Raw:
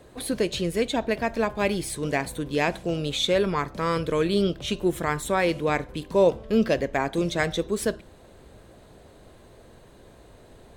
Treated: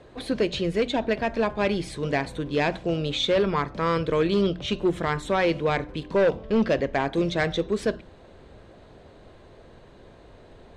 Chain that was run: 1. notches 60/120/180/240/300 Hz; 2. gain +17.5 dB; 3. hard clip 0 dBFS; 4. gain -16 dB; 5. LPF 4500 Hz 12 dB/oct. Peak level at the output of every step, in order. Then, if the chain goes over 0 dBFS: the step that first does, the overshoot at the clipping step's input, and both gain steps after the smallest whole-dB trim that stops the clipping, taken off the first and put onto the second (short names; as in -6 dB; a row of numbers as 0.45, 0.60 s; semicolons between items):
-9.0, +8.5, 0.0, -16.0, -15.5 dBFS; step 2, 8.5 dB; step 2 +8.5 dB, step 4 -7 dB